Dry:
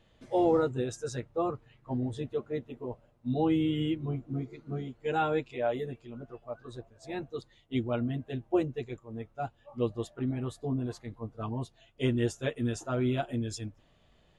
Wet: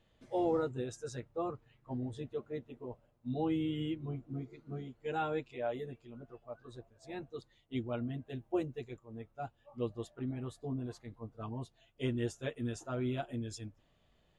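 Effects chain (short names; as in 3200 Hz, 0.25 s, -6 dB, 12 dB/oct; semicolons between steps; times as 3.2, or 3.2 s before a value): 8.29–8.93 high shelf 8300 Hz +7.5 dB; gain -6.5 dB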